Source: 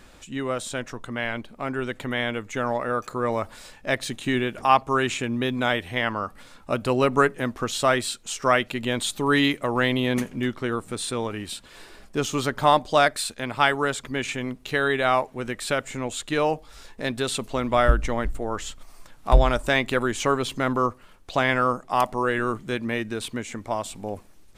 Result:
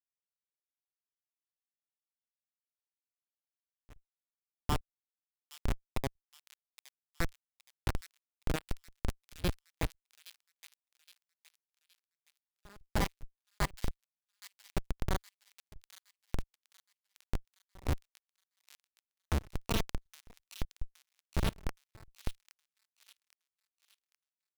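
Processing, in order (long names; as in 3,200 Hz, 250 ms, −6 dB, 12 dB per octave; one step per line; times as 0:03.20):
pitch glide at a constant tempo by +11 semitones starting unshifted
guitar amp tone stack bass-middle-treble 5-5-5
in parallel at −3 dB: bit reduction 6 bits
on the sum: comparator with hysteresis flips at −19.5 dBFS
gate pattern "..xxx..xxxxx.xx" 178 BPM −24 dB
on a send: delay with a high-pass on its return 818 ms, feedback 40%, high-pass 3,000 Hz, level −10 dB
on the sum: level +7 dB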